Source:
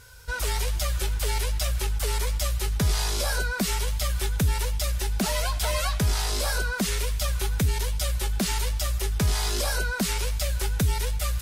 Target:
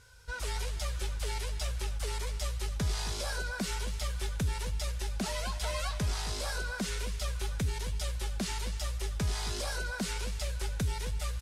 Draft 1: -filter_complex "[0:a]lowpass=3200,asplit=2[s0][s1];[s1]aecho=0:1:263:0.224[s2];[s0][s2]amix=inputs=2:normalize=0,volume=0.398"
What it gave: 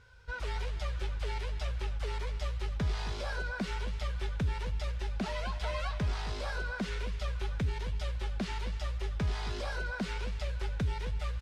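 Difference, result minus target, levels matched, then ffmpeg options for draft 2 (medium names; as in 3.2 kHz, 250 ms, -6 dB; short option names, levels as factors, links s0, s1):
8 kHz band -13.0 dB
-filter_complex "[0:a]lowpass=9400,asplit=2[s0][s1];[s1]aecho=0:1:263:0.224[s2];[s0][s2]amix=inputs=2:normalize=0,volume=0.398"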